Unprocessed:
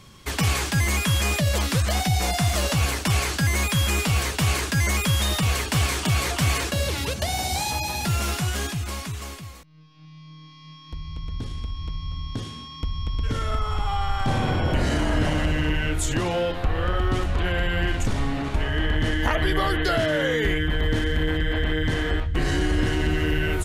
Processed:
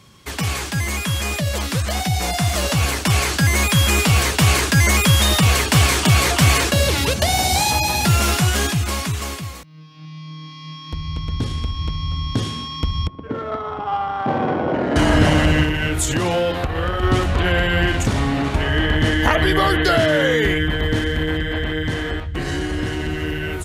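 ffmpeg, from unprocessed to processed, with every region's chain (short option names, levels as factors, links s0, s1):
-filter_complex "[0:a]asettb=1/sr,asplit=3[s0][s1][s2];[s0]atrim=end=13.074[s3];[s1]atrim=start=13.07:end=14.96,asetpts=PTS-STARTPTS,afade=t=in:d=0.004:c=qsin,afade=t=out:st=1.886:d=0.004:c=qsin,highpass=270,adynamicsmooth=sensitivity=0.5:basefreq=800[s4];[s2]atrim=start=14.956[s5];[s3][s4]acrossfade=d=0.004:c1=hsin:c2=qsin[s6];[s6][s5]acrossfade=d=0.004:c1=qsin:c2=hsin,asettb=1/sr,asplit=3[s7][s8][s9];[s7]atrim=end=15.634[s10];[s8]atrim=start=15.63:end=17.03,asetpts=PTS-STARTPTS,afade=t=in:d=0.004:c=qsin,afade=t=out:st=1.396:d=0.004:c=qsin,acompressor=threshold=0.0631:ratio=3:attack=3.2:release=140:knee=1:detection=peak,highshelf=f=11000:g=5.5[s11];[s9]atrim=start=17.026[s12];[s10][s11]acrossfade=d=0.004:c1=hsin:c2=qsin[s13];[s13][s12]acrossfade=d=0.004:c1=qsin:c2=hsin,highpass=61,dynaudnorm=f=360:g=17:m=3.76"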